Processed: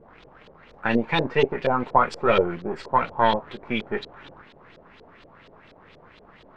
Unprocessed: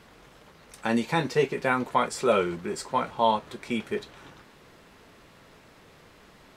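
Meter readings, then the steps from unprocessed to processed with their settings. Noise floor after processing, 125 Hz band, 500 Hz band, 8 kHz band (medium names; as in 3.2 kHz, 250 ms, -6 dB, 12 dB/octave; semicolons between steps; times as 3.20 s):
-52 dBFS, +3.0 dB, +3.0 dB, under -10 dB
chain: partial rectifier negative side -7 dB; LFO low-pass saw up 4.2 Hz 460–4200 Hz; trim +3.5 dB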